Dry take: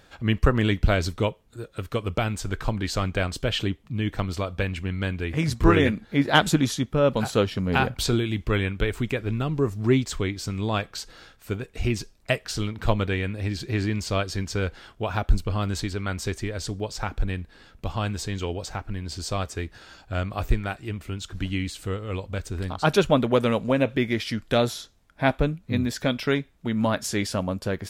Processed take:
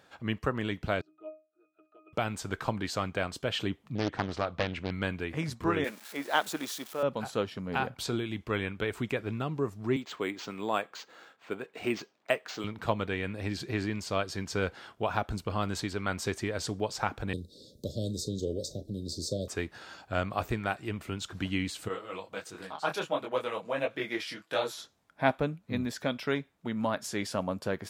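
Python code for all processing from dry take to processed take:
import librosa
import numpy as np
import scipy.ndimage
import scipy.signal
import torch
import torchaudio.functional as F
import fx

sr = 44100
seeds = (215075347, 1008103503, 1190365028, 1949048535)

y = fx.chain(x, sr, fx.highpass(hz=350.0, slope=24),
    fx.octave_resonator(note='D#', decay_s=0.3), at=(1.01, 2.13))
y = fx.chain(y, sr, fx.lowpass(hz=5100.0, slope=12),
    fx.doppler_dist(depth_ms=0.82), at=(3.95, 4.91))
y = fx.chain(y, sr, fx.crossing_spikes(level_db=-22.5),
    fx.highpass(hz=400.0, slope=12),
    fx.high_shelf(hz=5800.0, db=-6.5), at=(5.84, 7.03))
y = fx.chain(y, sr, fx.highpass(hz=270.0, slope=12),
    fx.peak_eq(hz=5600.0, db=-3.5, octaves=0.76),
    fx.resample_linear(factor=4), at=(9.96, 12.64))
y = fx.chain(y, sr, fx.cheby1_bandstop(low_hz=580.0, high_hz=3700.0, order=5),
    fx.doubler(ms=36.0, db=-14.0),
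    fx.band_squash(depth_pct=40), at=(17.33, 19.48))
y = fx.chain(y, sr, fx.highpass(hz=520.0, slope=6),
    fx.comb(ms=6.2, depth=0.47),
    fx.detune_double(cents=51), at=(21.88, 24.78))
y = scipy.signal.sosfilt(scipy.signal.butter(2, 120.0, 'highpass', fs=sr, output='sos'), y)
y = fx.peak_eq(y, sr, hz=910.0, db=4.5, octaves=1.7)
y = fx.rider(y, sr, range_db=5, speed_s=0.5)
y = F.gain(torch.from_numpy(y), -7.0).numpy()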